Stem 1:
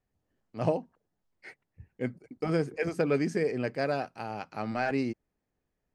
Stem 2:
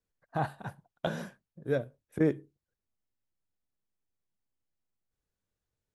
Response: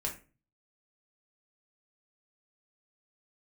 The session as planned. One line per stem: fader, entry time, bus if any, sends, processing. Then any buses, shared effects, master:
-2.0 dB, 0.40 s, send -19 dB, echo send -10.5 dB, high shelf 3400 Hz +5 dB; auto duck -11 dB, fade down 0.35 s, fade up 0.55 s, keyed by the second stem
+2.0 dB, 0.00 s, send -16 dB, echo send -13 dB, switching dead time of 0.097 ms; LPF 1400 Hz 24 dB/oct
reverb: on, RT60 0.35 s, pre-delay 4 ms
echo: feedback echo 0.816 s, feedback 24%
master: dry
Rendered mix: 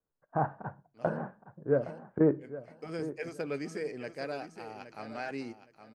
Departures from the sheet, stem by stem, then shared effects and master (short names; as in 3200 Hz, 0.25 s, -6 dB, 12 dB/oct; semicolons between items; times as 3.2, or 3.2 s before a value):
stem 1 -2.0 dB -> -9.0 dB; master: extra low shelf 110 Hz -10 dB